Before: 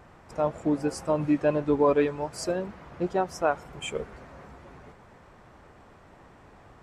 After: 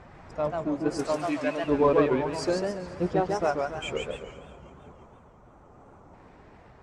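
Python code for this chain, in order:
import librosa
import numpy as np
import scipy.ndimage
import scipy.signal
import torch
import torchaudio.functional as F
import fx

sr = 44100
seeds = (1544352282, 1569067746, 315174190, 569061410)

p1 = fx.spec_quant(x, sr, step_db=15)
p2 = fx.tilt_eq(p1, sr, slope=4.5, at=(0.99, 1.64))
p3 = fx.spec_box(p2, sr, start_s=4.2, length_s=1.94, low_hz=1500.0, high_hz=5700.0, gain_db=-10)
p4 = fx.echo_wet_highpass(p3, sr, ms=166, feedback_pct=66, hz=1600.0, wet_db=-14.5)
p5 = fx.tremolo_random(p4, sr, seeds[0], hz=3.5, depth_pct=55)
p6 = np.clip(10.0 ** (32.0 / 20.0) * p5, -1.0, 1.0) / 10.0 ** (32.0 / 20.0)
p7 = p5 + (p6 * 10.0 ** (-8.0 / 20.0))
p8 = fx.air_absorb(p7, sr, metres=71.0)
p9 = fx.echo_warbled(p8, sr, ms=139, feedback_pct=41, rate_hz=2.8, cents=211, wet_db=-3.5)
y = p9 * 10.0 ** (1.0 / 20.0)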